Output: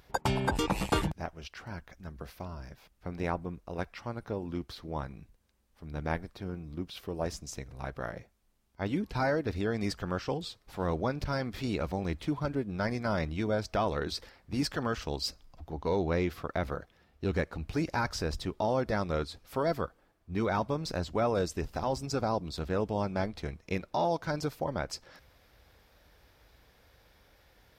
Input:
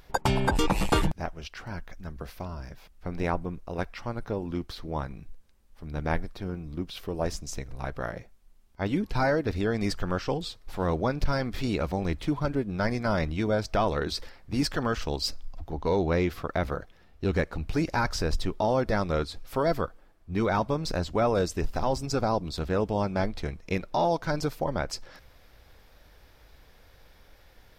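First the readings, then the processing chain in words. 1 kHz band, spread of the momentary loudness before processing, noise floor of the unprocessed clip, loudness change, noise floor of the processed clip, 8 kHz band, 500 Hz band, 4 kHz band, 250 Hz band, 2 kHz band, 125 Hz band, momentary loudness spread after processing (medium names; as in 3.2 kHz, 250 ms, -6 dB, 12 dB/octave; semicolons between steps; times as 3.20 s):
-4.0 dB, 12 LU, -57 dBFS, -4.0 dB, -67 dBFS, -4.0 dB, -4.0 dB, -4.0 dB, -4.0 dB, -4.0 dB, -4.0 dB, 13 LU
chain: high-pass 47 Hz; trim -4 dB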